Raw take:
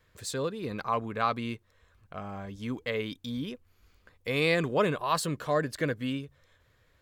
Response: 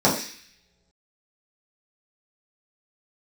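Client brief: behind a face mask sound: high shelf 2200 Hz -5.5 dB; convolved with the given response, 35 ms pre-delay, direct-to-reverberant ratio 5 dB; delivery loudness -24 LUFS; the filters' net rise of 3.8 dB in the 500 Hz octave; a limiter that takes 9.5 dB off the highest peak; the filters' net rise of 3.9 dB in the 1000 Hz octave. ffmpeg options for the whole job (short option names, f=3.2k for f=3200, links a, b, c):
-filter_complex "[0:a]equalizer=f=500:t=o:g=3.5,equalizer=f=1k:t=o:g=5,alimiter=limit=-18.5dB:level=0:latency=1,asplit=2[a][b];[1:a]atrim=start_sample=2205,adelay=35[c];[b][c]afir=irnorm=-1:irlink=0,volume=-24dB[d];[a][d]amix=inputs=2:normalize=0,highshelf=f=2.2k:g=-5.5,volume=5dB"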